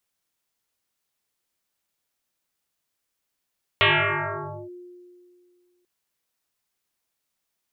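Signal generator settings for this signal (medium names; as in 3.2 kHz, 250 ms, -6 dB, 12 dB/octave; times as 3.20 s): FM tone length 2.04 s, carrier 356 Hz, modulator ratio 0.71, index 12, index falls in 0.88 s linear, decay 2.27 s, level -13.5 dB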